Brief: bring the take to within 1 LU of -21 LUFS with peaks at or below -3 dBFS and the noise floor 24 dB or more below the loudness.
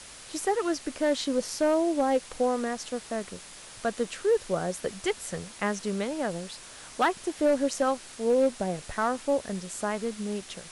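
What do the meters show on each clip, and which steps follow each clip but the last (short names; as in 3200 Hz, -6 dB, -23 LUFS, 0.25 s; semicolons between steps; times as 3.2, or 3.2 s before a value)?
clipped 0.4%; flat tops at -17.0 dBFS; noise floor -47 dBFS; noise floor target -53 dBFS; loudness -29.0 LUFS; peak -17.0 dBFS; loudness target -21.0 LUFS
-> clip repair -17 dBFS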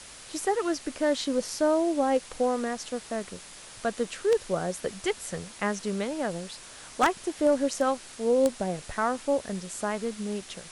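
clipped 0.0%; noise floor -47 dBFS; noise floor target -53 dBFS
-> denoiser 6 dB, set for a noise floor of -47 dBFS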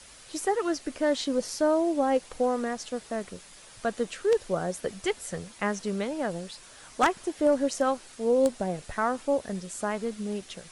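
noise floor -50 dBFS; noise floor target -53 dBFS
-> denoiser 6 dB, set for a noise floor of -50 dBFS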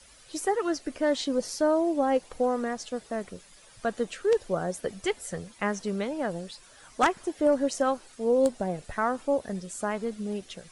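noise floor -54 dBFS; loudness -29.0 LUFS; peak -8.0 dBFS; loudness target -21.0 LUFS
-> gain +8 dB; limiter -3 dBFS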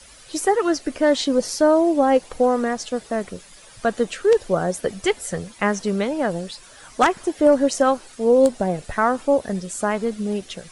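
loudness -21.0 LUFS; peak -3.0 dBFS; noise floor -46 dBFS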